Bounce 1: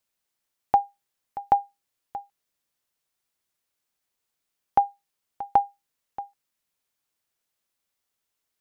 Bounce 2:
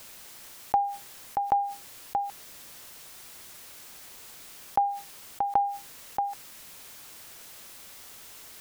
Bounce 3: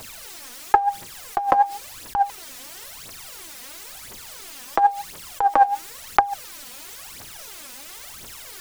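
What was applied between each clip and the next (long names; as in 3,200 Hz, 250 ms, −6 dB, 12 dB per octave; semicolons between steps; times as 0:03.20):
envelope flattener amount 70%; level −5.5 dB
phase shifter 0.97 Hz, delay 4.2 ms, feedback 71%; highs frequency-modulated by the lows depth 0.99 ms; level +6 dB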